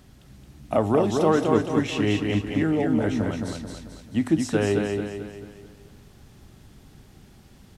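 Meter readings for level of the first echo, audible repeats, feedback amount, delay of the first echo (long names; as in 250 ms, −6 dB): −4.0 dB, 5, 46%, 220 ms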